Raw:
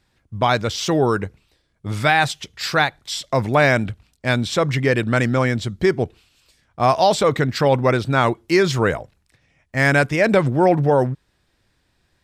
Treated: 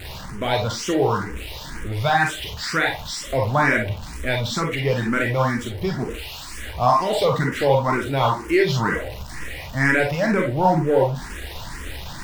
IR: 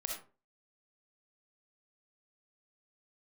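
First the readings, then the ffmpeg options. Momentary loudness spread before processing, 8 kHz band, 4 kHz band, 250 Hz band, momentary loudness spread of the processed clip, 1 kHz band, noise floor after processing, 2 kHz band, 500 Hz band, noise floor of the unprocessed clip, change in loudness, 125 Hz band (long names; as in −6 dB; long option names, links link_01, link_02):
11 LU, −1.5 dB, −2.0 dB, −3.0 dB, 15 LU, −1.0 dB, −35 dBFS, −2.0 dB, −3.0 dB, −67 dBFS, −2.5 dB, −2.5 dB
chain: -filter_complex "[0:a]aeval=exprs='val(0)+0.5*0.0562*sgn(val(0))':channel_layout=same,bass=frequency=250:gain=1,treble=frequency=4000:gain=-4[link_01];[1:a]atrim=start_sample=2205,asetrate=66150,aresample=44100[link_02];[link_01][link_02]afir=irnorm=-1:irlink=0,asplit=2[link_03][link_04];[link_04]afreqshift=2.1[link_05];[link_03][link_05]amix=inputs=2:normalize=1,volume=3dB"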